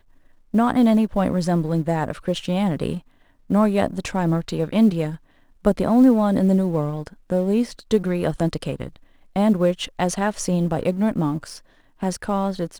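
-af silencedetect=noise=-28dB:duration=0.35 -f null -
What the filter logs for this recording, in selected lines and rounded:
silence_start: 0.00
silence_end: 0.54 | silence_duration: 0.54
silence_start: 2.98
silence_end: 3.50 | silence_duration: 0.52
silence_start: 5.15
silence_end: 5.65 | silence_duration: 0.50
silence_start: 8.88
silence_end: 9.36 | silence_duration: 0.47
silence_start: 11.56
silence_end: 12.02 | silence_duration: 0.47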